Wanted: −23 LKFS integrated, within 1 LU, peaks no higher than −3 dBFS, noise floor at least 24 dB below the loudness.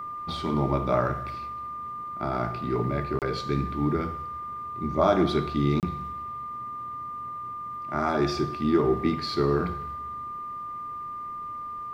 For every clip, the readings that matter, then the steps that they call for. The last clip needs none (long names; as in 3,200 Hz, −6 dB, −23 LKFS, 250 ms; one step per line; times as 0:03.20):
number of dropouts 2; longest dropout 28 ms; interfering tone 1,200 Hz; level of the tone −33 dBFS; integrated loudness −28.5 LKFS; sample peak −8.5 dBFS; target loudness −23.0 LKFS
→ repair the gap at 0:03.19/0:05.80, 28 ms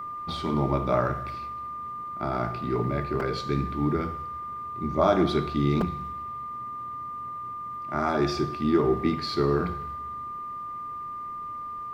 number of dropouts 0; interfering tone 1,200 Hz; level of the tone −33 dBFS
→ notch filter 1,200 Hz, Q 30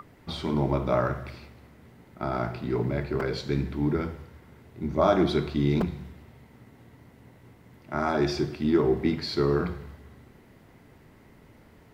interfering tone none found; integrated loudness −27.5 LKFS; sample peak −8.5 dBFS; target loudness −23.0 LKFS
→ level +4.5 dB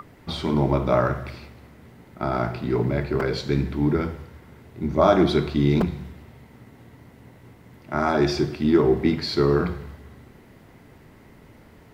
integrated loudness −23.0 LKFS; sample peak −4.0 dBFS; background noise floor −50 dBFS